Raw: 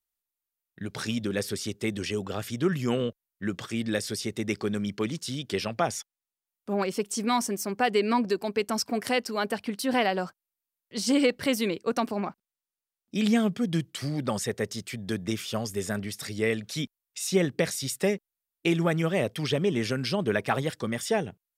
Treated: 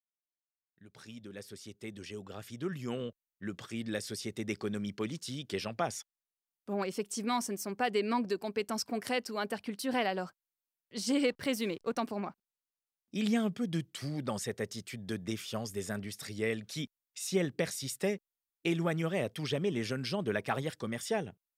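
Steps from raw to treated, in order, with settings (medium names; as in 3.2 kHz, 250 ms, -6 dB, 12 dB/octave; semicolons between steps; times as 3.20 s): fade-in on the opening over 4.47 s; 11.27–11.99 s: hysteresis with a dead band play -46 dBFS; trim -6.5 dB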